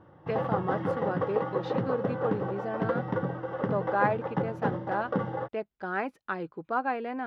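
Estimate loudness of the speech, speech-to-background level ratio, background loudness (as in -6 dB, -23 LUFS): -33.5 LUFS, -1.5 dB, -32.0 LUFS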